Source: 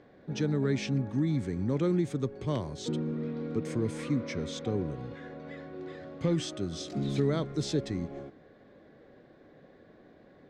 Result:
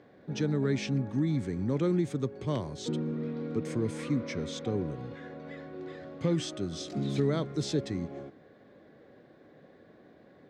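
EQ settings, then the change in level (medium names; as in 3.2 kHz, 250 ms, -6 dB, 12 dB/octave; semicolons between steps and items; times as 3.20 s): high-pass 74 Hz; 0.0 dB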